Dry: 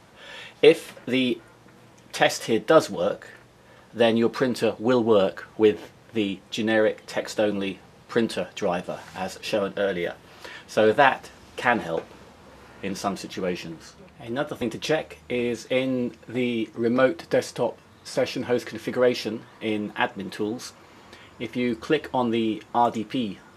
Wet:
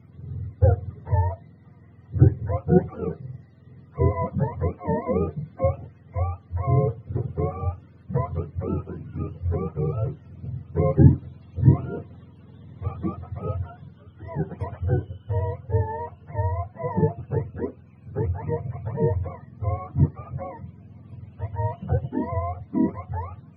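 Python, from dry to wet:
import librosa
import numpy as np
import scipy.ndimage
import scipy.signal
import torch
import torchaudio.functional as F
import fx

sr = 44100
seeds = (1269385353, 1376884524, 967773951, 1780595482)

y = fx.octave_mirror(x, sr, pivot_hz=480.0)
y = fx.bass_treble(y, sr, bass_db=11, treble_db=-3)
y = F.gain(torch.from_numpy(y), -5.5).numpy()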